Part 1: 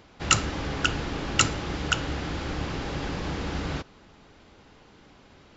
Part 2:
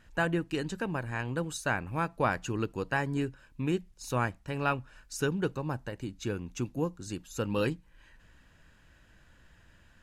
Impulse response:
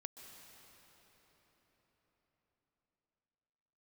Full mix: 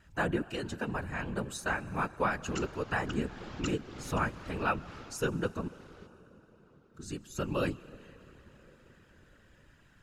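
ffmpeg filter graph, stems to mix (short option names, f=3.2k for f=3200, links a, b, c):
-filter_complex "[0:a]adelay=2250,volume=-7.5dB,afade=t=out:st=4.93:d=0.26:silence=0.251189[a];[1:a]volume=1.5dB,asplit=3[b][c][d];[b]atrim=end=5.68,asetpts=PTS-STARTPTS,afade=t=out:st=5.676:d=0.004:c=hsin[e];[c]atrim=start=5.68:end=6.94,asetpts=PTS-STARTPTS,volume=0[f];[d]atrim=start=6.94,asetpts=PTS-STARTPTS,afade=t=in:d=0.004:c=hsin[g];[e][f][g]concat=n=3:v=0:a=1,asplit=3[h][i][j];[i]volume=-5dB[k];[j]apad=whole_len=344534[l];[a][l]sidechaincompress=threshold=-34dB:ratio=4:attack=8.2:release=280[m];[2:a]atrim=start_sample=2205[n];[k][n]afir=irnorm=-1:irlink=0[o];[m][h][o]amix=inputs=3:normalize=0,equalizer=f=1.3k:w=4.5:g=3.5,afftfilt=real='hypot(re,im)*cos(2*PI*random(0))':imag='hypot(re,im)*sin(2*PI*random(1))':win_size=512:overlap=0.75"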